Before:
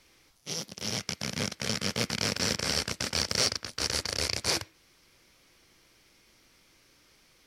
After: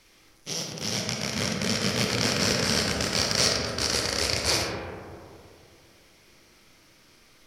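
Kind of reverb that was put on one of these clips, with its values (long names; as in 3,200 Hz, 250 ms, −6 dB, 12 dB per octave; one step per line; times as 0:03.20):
comb and all-pass reverb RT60 2.4 s, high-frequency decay 0.3×, pre-delay 10 ms, DRR −0.5 dB
level +2.5 dB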